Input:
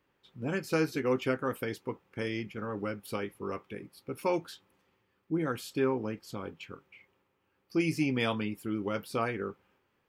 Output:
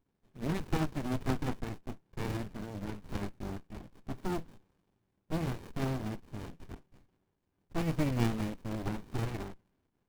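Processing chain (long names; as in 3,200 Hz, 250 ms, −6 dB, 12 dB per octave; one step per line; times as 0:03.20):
one scale factor per block 3 bits
rotating-speaker cabinet horn 1.2 Hz, later 6.3 Hz, at 0:05.82
windowed peak hold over 65 samples
level +1.5 dB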